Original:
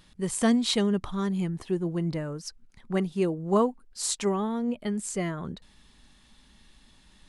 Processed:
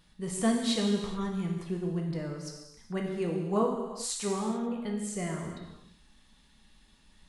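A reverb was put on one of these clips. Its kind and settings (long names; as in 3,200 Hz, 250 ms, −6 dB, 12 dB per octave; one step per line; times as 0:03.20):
reverb whose tail is shaped and stops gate 460 ms falling, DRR −0.5 dB
level −7 dB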